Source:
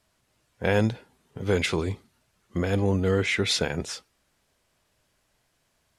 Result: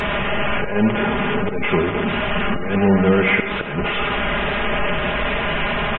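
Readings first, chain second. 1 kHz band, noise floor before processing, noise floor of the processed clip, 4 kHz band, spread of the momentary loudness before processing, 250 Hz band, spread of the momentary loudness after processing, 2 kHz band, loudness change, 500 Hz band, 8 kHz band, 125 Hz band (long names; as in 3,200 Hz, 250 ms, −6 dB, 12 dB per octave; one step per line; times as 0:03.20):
+16.0 dB, −72 dBFS, −24 dBFS, +6.5 dB, 12 LU, +10.0 dB, 6 LU, +12.5 dB, +6.5 dB, +8.0 dB, below −25 dB, +4.5 dB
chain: linear delta modulator 16 kbit/s, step −23 dBFS
comb filter 4.9 ms, depth 66%
volume swells 215 ms
comb and all-pass reverb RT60 0.65 s, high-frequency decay 0.35×, pre-delay 35 ms, DRR 7 dB
gate on every frequency bin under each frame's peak −30 dB strong
level +6.5 dB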